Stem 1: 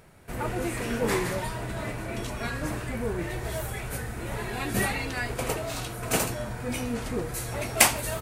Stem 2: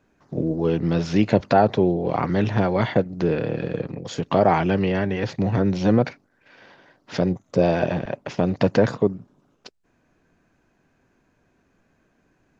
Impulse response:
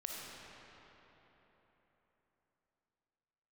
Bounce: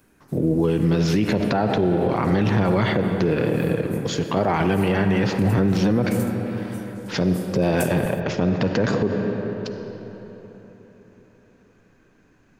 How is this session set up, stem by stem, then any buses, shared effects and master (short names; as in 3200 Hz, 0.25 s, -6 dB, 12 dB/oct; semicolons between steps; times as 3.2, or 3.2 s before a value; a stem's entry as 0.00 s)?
-3.0 dB, 0.00 s, no send, differentiator; auto duck -8 dB, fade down 0.30 s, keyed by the second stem
+2.5 dB, 0.00 s, send -3 dB, dry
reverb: on, RT60 4.0 s, pre-delay 15 ms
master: bell 660 Hz -5 dB 0.62 oct; limiter -11 dBFS, peak gain reduction 11 dB